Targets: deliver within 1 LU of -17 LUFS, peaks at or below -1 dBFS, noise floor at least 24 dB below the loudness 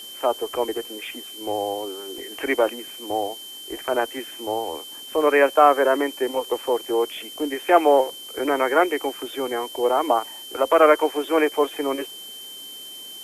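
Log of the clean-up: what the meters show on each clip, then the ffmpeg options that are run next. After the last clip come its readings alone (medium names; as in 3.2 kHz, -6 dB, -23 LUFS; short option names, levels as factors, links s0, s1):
steady tone 3.1 kHz; tone level -37 dBFS; noise floor -39 dBFS; noise floor target -46 dBFS; loudness -22.0 LUFS; peak level -2.0 dBFS; loudness target -17.0 LUFS
-> -af "bandreject=f=3100:w=30"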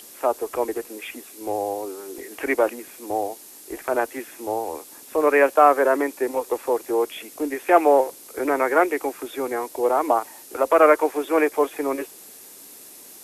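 steady tone not found; noise floor -44 dBFS; noise floor target -46 dBFS
-> -af "afftdn=nr=6:nf=-44"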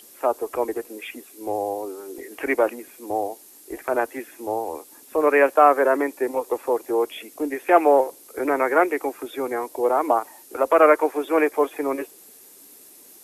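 noise floor -48 dBFS; loudness -22.0 LUFS; peak level -2.0 dBFS; loudness target -17.0 LUFS
-> -af "volume=1.78,alimiter=limit=0.891:level=0:latency=1"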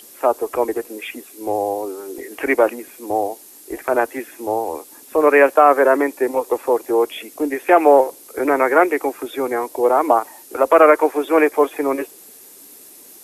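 loudness -17.5 LUFS; peak level -1.0 dBFS; noise floor -43 dBFS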